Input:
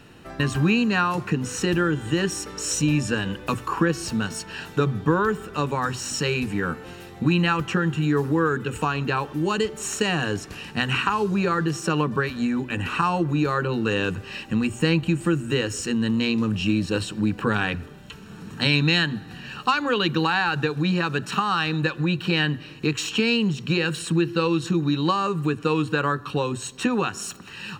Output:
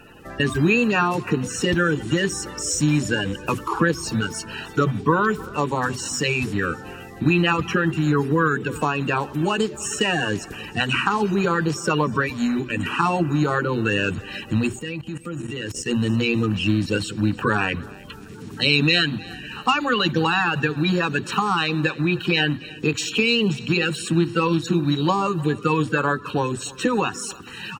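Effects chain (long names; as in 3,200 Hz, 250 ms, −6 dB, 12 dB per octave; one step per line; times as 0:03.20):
spectral magnitudes quantised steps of 30 dB
repeating echo 309 ms, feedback 42%, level −22 dB
0:14.79–0:15.86: output level in coarse steps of 16 dB
level +2.5 dB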